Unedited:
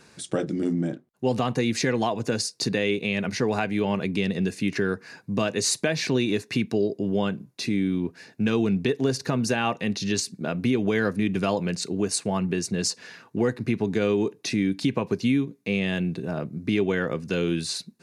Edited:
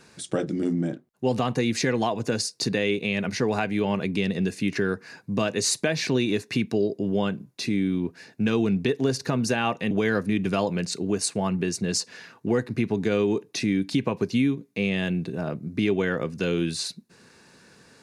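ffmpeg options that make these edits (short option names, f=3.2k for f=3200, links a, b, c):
-filter_complex "[0:a]asplit=2[a][b];[a]atrim=end=9.912[c];[b]atrim=start=10.808[d];[c][d]acrossfade=d=0.004:c1=hsin:c2=hsin"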